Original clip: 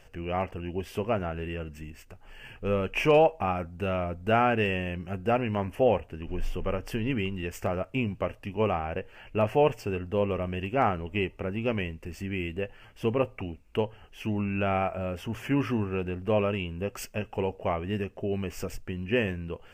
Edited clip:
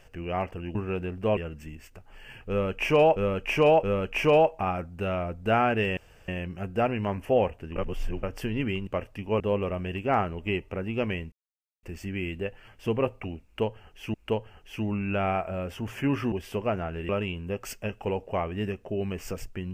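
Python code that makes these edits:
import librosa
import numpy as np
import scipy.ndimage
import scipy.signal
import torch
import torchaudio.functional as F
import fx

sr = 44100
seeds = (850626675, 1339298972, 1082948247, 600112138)

y = fx.edit(x, sr, fx.swap(start_s=0.75, length_s=0.77, other_s=15.79, other_length_s=0.62),
    fx.repeat(start_s=2.64, length_s=0.67, count=3),
    fx.insert_room_tone(at_s=4.78, length_s=0.31),
    fx.reverse_span(start_s=6.26, length_s=0.47),
    fx.cut(start_s=7.37, length_s=0.78),
    fx.cut(start_s=8.68, length_s=1.4),
    fx.insert_silence(at_s=12.0, length_s=0.51),
    fx.repeat(start_s=13.61, length_s=0.7, count=2), tone=tone)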